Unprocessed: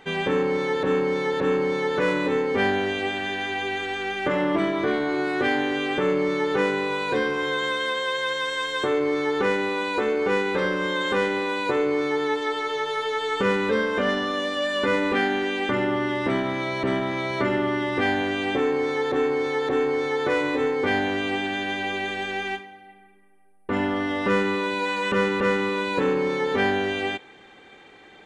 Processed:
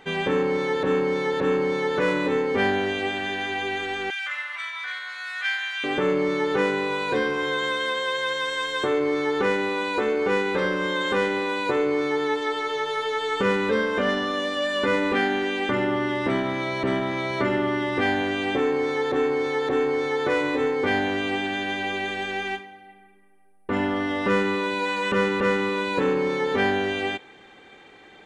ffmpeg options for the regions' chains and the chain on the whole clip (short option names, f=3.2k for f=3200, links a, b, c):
-filter_complex "[0:a]asettb=1/sr,asplit=3[a][b][c];[a]atrim=end=4.104[d];[b]atrim=start=4.1:end=5.84,asetpts=PTS-STARTPTS,afade=t=in:d=0.004:c=qsin,afade=t=out:st=1.736:d=0.004:c=qsin,highpass=f=1.4k:w=0.5412,highpass=f=1.4k:w=1.3066,aecho=1:1:3.9:0.61,atrim=end_sample=76734[e];[c]atrim=start=5.836[f];[d][e]acrossfade=d=0.004:c1=hsin:c2=qsin[g];[g][f]acrossfade=d=0.004:c1=qsin:c2=hsin"